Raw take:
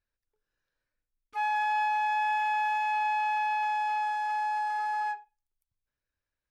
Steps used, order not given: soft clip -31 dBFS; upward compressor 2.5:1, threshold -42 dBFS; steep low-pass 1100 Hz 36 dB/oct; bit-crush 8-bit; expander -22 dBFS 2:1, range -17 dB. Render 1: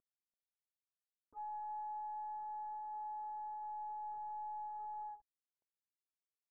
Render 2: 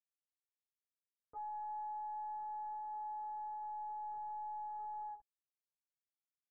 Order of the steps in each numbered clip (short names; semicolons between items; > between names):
soft clip > upward compressor > bit-crush > steep low-pass > expander; soft clip > bit-crush > expander > upward compressor > steep low-pass